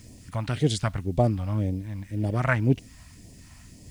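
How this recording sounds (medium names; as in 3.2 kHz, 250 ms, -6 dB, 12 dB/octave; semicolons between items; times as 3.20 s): a quantiser's noise floor 10-bit, dither none; phasing stages 2, 1.9 Hz, lowest notch 380–1300 Hz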